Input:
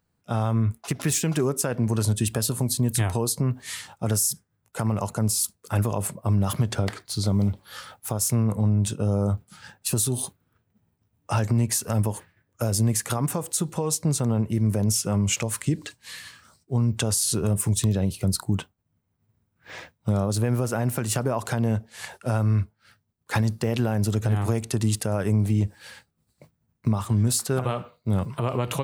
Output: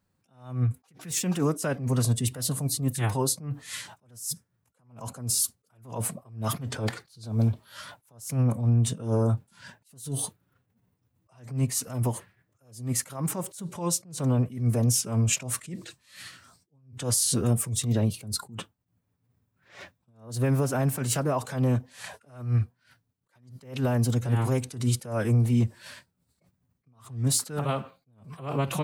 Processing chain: formant-preserving pitch shift +2 st; wow and flutter 23 cents; attack slew limiter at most 130 dB/s

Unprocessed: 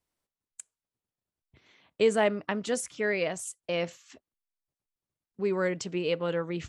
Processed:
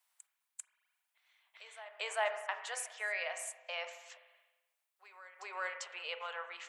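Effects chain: steep high-pass 690 Hz 36 dB/oct; bell 5400 Hz -5 dB 1 oct; in parallel at -1.5 dB: compressor, threshold -45 dBFS, peak gain reduction 19 dB; on the sum: reverse echo 0.395 s -18 dB; on a send at -7.5 dB: reverb RT60 1.0 s, pre-delay 35 ms; on the sum: mismatched tape noise reduction encoder only; gain -5.5 dB

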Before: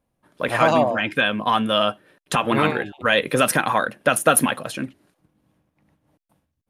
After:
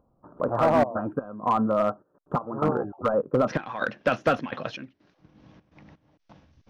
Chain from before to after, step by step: de-esser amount 85%; elliptic low-pass 1300 Hz, stop band 40 dB, from 3.47 s 5900 Hz; upward compressor, threshold -38 dBFS; step gate "..xxxxx.xx" 126 bpm -12 dB; hard clip -14.5 dBFS, distortion -17 dB

